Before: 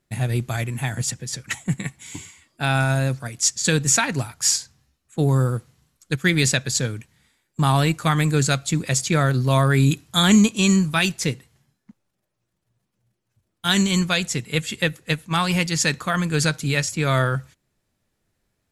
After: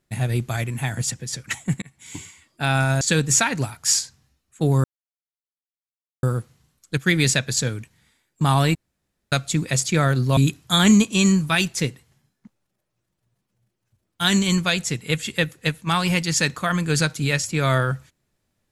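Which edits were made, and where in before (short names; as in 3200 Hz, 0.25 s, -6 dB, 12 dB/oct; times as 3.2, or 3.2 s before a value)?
1.82–2.16 fade in
3.01–3.58 cut
5.41 insert silence 1.39 s
7.93–8.5 room tone
9.55–9.81 cut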